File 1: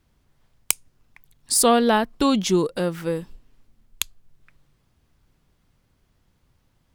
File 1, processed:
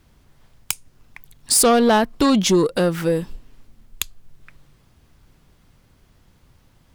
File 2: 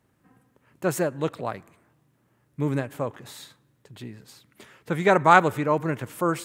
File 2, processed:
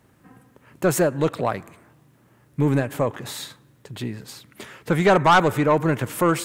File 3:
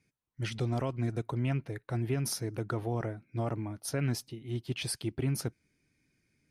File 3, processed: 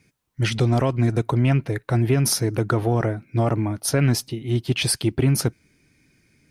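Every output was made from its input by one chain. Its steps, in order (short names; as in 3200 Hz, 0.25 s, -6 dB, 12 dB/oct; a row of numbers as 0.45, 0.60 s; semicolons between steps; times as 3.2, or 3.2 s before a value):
in parallel at -1 dB: compressor, threshold -28 dBFS; on the sum: soft clip -13 dBFS; normalise peaks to -9 dBFS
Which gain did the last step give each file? +4.0, +4.0, +8.0 dB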